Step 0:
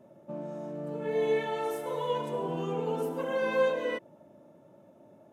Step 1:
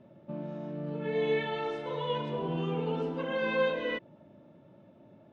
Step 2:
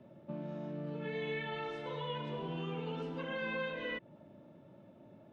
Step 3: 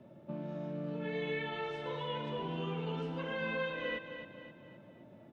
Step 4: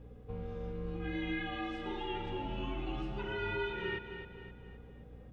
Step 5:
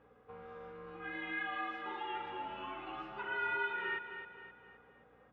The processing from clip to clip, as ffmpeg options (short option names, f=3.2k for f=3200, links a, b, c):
-af "lowpass=f=3.9k:w=0.5412,lowpass=f=3.9k:w=1.3066,equalizer=f=670:w=0.41:g=-10,volume=7dB"
-filter_complex "[0:a]acrossover=split=180|1400|2900[a][b][c][d];[a]acompressor=threshold=-44dB:ratio=4[e];[b]acompressor=threshold=-40dB:ratio=4[f];[c]acompressor=threshold=-39dB:ratio=4[g];[d]acompressor=threshold=-56dB:ratio=4[h];[e][f][g][h]amix=inputs=4:normalize=0,volume=-1dB"
-af "aecho=1:1:262|524|786|1048|1310:0.335|0.154|0.0709|0.0326|0.015,volume=1dB"
-af "afreqshift=-120,aeval=exprs='val(0)+0.00251*(sin(2*PI*60*n/s)+sin(2*PI*2*60*n/s)/2+sin(2*PI*3*60*n/s)/3+sin(2*PI*4*60*n/s)/4+sin(2*PI*5*60*n/s)/5)':c=same"
-af "bandpass=f=1.3k:t=q:w=1.7:csg=0,volume=6.5dB"